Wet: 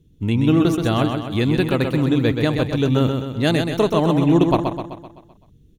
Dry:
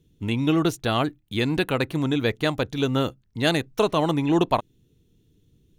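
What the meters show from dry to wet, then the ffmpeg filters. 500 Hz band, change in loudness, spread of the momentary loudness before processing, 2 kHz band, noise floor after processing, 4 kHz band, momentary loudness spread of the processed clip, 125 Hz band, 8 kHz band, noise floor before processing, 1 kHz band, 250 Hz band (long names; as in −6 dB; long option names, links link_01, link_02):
+4.5 dB, +5.0 dB, 5 LU, +1.0 dB, −53 dBFS, +0.5 dB, 6 LU, +8.0 dB, +0.5 dB, −64 dBFS, +2.0 dB, +6.5 dB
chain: -filter_complex "[0:a]lowshelf=frequency=410:gain=8.5,asplit=2[link_01][link_02];[link_02]aecho=0:1:128|256|384|512|640|768|896:0.531|0.276|0.144|0.0746|0.0388|0.0202|0.0105[link_03];[link_01][link_03]amix=inputs=2:normalize=0,volume=-1dB"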